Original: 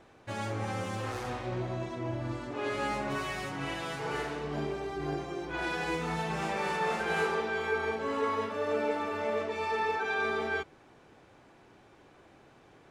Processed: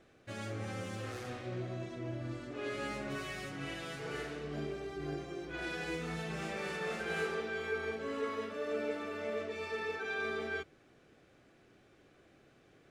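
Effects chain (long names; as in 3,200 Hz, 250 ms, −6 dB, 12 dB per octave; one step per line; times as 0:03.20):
parametric band 920 Hz −13 dB 0.45 octaves
mains-hum notches 50/100 Hz
level −4.5 dB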